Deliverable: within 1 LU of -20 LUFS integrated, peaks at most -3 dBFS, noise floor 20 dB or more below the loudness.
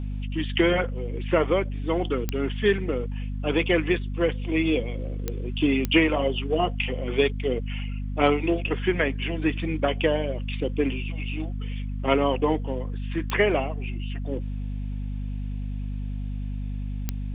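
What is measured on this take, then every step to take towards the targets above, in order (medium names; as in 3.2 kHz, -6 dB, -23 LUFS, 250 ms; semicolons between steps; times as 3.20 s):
clicks found 5; hum 50 Hz; highest harmonic 250 Hz; hum level -28 dBFS; loudness -26.5 LUFS; peak level -4.5 dBFS; loudness target -20.0 LUFS
-> de-click; hum notches 50/100/150/200/250 Hz; trim +6.5 dB; peak limiter -3 dBFS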